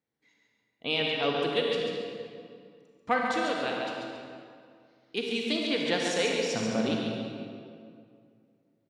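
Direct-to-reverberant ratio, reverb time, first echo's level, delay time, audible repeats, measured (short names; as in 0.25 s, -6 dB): -1.5 dB, 2.2 s, -6.0 dB, 0.14 s, 1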